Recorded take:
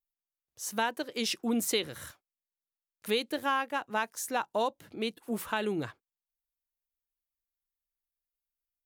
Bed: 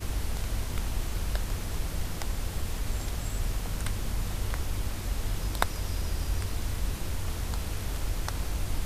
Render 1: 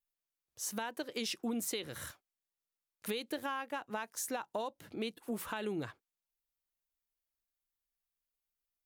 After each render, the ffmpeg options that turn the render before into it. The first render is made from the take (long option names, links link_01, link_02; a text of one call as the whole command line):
ffmpeg -i in.wav -af "alimiter=limit=-22dB:level=0:latency=1:release=207,acompressor=threshold=-35dB:ratio=3" out.wav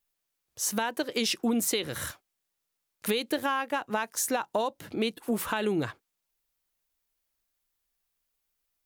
ffmpeg -i in.wav -af "volume=9.5dB" out.wav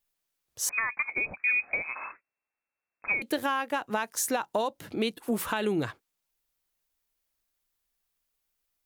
ffmpeg -i in.wav -filter_complex "[0:a]asettb=1/sr,asplit=3[link_01][link_02][link_03];[link_01]atrim=end=0.694[link_04];[link_02]atrim=start=0.69:end=3.22,asetpts=PTS-STARTPTS,afade=type=in:duration=0.004:curve=qsin,afade=type=out:start_time=2.526:duration=0.004:curve=qsin,lowpass=frequency=2300:width_type=q:width=0.5098,lowpass=frequency=2300:width_type=q:width=0.6013,lowpass=frequency=2300:width_type=q:width=0.9,lowpass=frequency=2300:width_type=q:width=2.563,afreqshift=-2700[link_05];[link_03]atrim=start=3.216[link_06];[link_04][link_05]acrossfade=duration=0.004:curve1=hsin:curve2=qsin[link_07];[link_07][link_06]acrossfade=duration=0.004:curve1=qsin:curve2=hsin" out.wav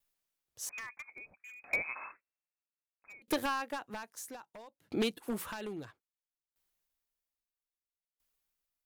ffmpeg -i in.wav -af "aeval=exprs='0.0841*(abs(mod(val(0)/0.0841+3,4)-2)-1)':channel_layout=same,aeval=exprs='val(0)*pow(10,-27*if(lt(mod(0.61*n/s,1),2*abs(0.61)/1000),1-mod(0.61*n/s,1)/(2*abs(0.61)/1000),(mod(0.61*n/s,1)-2*abs(0.61)/1000)/(1-2*abs(0.61)/1000))/20)':channel_layout=same" out.wav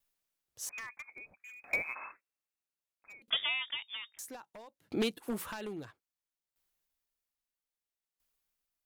ffmpeg -i in.wav -filter_complex "[0:a]asettb=1/sr,asplit=3[link_01][link_02][link_03];[link_01]atrim=end=1.504[link_04];[link_02]atrim=start=1.5:end=1.95,asetpts=PTS-STARTPTS,afade=type=in:duration=0.004:curve=qsin,afade=type=out:start_time=0.446:duration=0.004:curve=qsin,acrusher=bits=8:mode=log:mix=0:aa=0.000001[link_05];[link_03]atrim=start=1.946[link_06];[link_04][link_05]acrossfade=duration=0.004:curve1=hsin:curve2=qsin[link_07];[link_07][link_06]acrossfade=duration=0.004:curve1=qsin:curve2=hsin,asettb=1/sr,asplit=3[link_08][link_09][link_10];[link_08]atrim=end=3.304[link_11];[link_09]atrim=start=3.3:end=4.19,asetpts=PTS-STARTPTS,afade=type=in:duration=0.004:curve=qsin,afade=type=out:start_time=0.886:duration=0.004:curve=qsin,lowpass=frequency=3100:width_type=q:width=0.5098,lowpass=frequency=3100:width_type=q:width=0.6013,lowpass=frequency=3100:width_type=q:width=0.9,lowpass=frequency=3100:width_type=q:width=2.563,afreqshift=-3700[link_12];[link_10]atrim=start=4.186[link_13];[link_11][link_12]acrossfade=duration=0.004:curve1=hsin:curve2=qsin[link_14];[link_14][link_13]acrossfade=duration=0.004:curve1=qsin:curve2=hsin" out.wav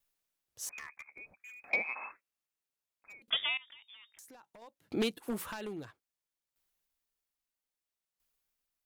ffmpeg -i in.wav -filter_complex "[0:a]asplit=3[link_01][link_02][link_03];[link_01]afade=type=out:start_time=0.74:duration=0.02[link_04];[link_02]aeval=exprs='val(0)*sin(2*PI*36*n/s)':channel_layout=same,afade=type=in:start_time=0.74:duration=0.02,afade=type=out:start_time=1.17:duration=0.02[link_05];[link_03]afade=type=in:start_time=1.17:duration=0.02[link_06];[link_04][link_05][link_06]amix=inputs=3:normalize=0,asettb=1/sr,asplit=3[link_07][link_08][link_09];[link_07]atrim=end=1.704[link_10];[link_08]atrim=start=1.7:end=2.1,asetpts=PTS-STARTPTS,afade=type=in:duration=0.004:curve=qsin,afade=type=out:start_time=0.396:duration=0.004:curve=qsin,highpass=210,equalizer=frequency=210:width_type=q:width=4:gain=9,equalizer=frequency=470:width_type=q:width=4:gain=3,equalizer=frequency=800:width_type=q:width=4:gain=6,equalizer=frequency=1500:width_type=q:width=4:gain=-6,equalizer=frequency=3100:width_type=q:width=4:gain=10,equalizer=frequency=4700:width_type=q:width=4:gain=6,lowpass=frequency=5100:width=0.5412,lowpass=frequency=5100:width=1.3066[link_11];[link_09]atrim=start=2.096[link_12];[link_10][link_11]acrossfade=duration=0.004:curve1=hsin:curve2=qsin[link_13];[link_13][link_12]acrossfade=duration=0.004:curve1=qsin:curve2=hsin,asettb=1/sr,asplit=3[link_14][link_15][link_16];[link_14]atrim=end=3.574[link_17];[link_15]atrim=start=3.57:end=4.62,asetpts=PTS-STARTPTS,afade=type=in:duration=0.004:curve=qsin,afade=type=out:start_time=1.046:duration=0.004:curve=qsin,acompressor=threshold=-52dB:ratio=6:attack=3.2:release=140:knee=1:detection=peak[link_18];[link_16]atrim=start=4.616[link_19];[link_17][link_18]acrossfade=duration=0.004:curve1=hsin:curve2=qsin[link_20];[link_20][link_19]acrossfade=duration=0.004:curve1=qsin:curve2=hsin" out.wav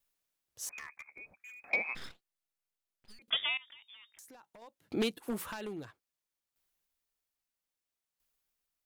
ffmpeg -i in.wav -filter_complex "[0:a]asettb=1/sr,asplit=3[link_01][link_02][link_03];[link_01]atrim=end=1.954[link_04];[link_02]atrim=start=1.95:end=3.19,asetpts=PTS-STARTPTS,afade=type=in:duration=0.004:curve=qsin,afade=type=out:start_time=1.236:duration=0.004:curve=qsin,aeval=exprs='abs(val(0))':channel_layout=same[link_05];[link_03]atrim=start=3.186[link_06];[link_04][link_05]acrossfade=duration=0.004:curve1=hsin:curve2=qsin[link_07];[link_07][link_06]acrossfade=duration=0.004:curve1=qsin:curve2=hsin" out.wav